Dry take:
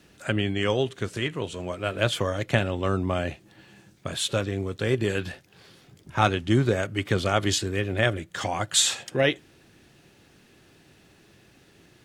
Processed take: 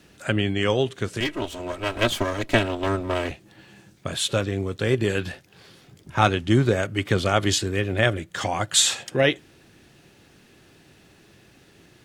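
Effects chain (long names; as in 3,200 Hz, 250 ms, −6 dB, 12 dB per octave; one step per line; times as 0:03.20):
0:01.20–0:03.31: lower of the sound and its delayed copy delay 3.1 ms
level +2.5 dB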